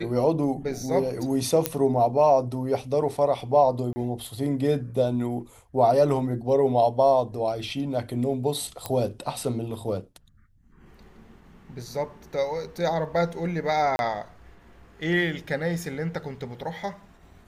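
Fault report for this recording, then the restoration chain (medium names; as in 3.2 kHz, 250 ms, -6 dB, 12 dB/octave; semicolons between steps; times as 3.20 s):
1.66 s: pop -5 dBFS
3.93–3.96 s: dropout 30 ms
8.86 s: pop -13 dBFS
13.96–13.99 s: dropout 31 ms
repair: de-click; interpolate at 3.93 s, 30 ms; interpolate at 13.96 s, 31 ms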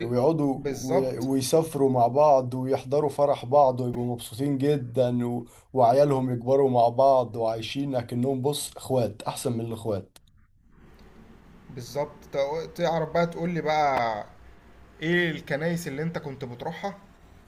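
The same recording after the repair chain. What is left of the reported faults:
nothing left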